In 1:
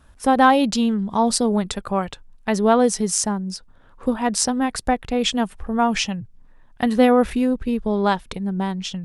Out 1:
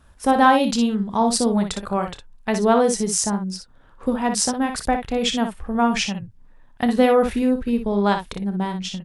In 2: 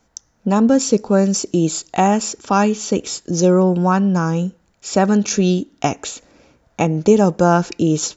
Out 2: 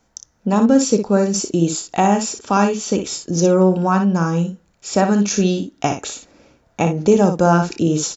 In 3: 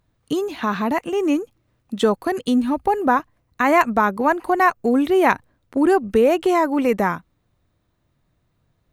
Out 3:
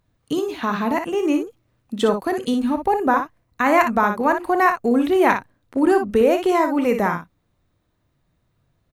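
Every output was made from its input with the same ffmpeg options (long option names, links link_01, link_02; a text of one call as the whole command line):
ffmpeg -i in.wav -af "aecho=1:1:30|59:0.2|0.422,volume=-1dB" out.wav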